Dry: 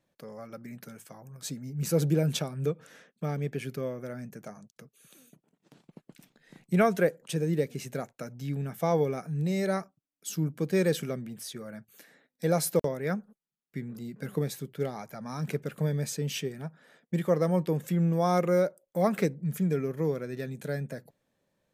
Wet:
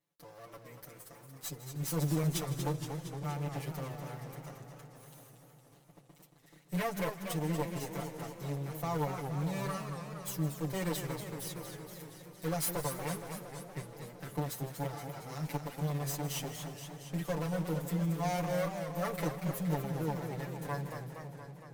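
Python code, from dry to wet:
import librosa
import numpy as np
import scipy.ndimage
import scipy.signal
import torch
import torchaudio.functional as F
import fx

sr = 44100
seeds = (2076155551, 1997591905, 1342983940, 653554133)

p1 = fx.lower_of_two(x, sr, delay_ms=5.9)
p2 = fx.high_shelf(p1, sr, hz=8700.0, db=9.5)
p3 = fx.quant_companded(p2, sr, bits=4)
p4 = p2 + (p3 * librosa.db_to_amplitude(-7.0))
p5 = fx.low_shelf(p4, sr, hz=77.0, db=-12.0)
p6 = fx.tube_stage(p5, sr, drive_db=18.0, bias=0.45)
p7 = p6 + 0.87 * np.pad(p6, (int(6.9 * sr / 1000.0), 0))[:len(p6)]
p8 = p7 + fx.echo_split(p7, sr, split_hz=770.0, low_ms=552, high_ms=158, feedback_pct=52, wet_db=-15.5, dry=0)
p9 = fx.echo_warbled(p8, sr, ms=233, feedback_pct=70, rate_hz=2.8, cents=176, wet_db=-8.0)
y = p9 * librosa.db_to_amplitude(-9.0)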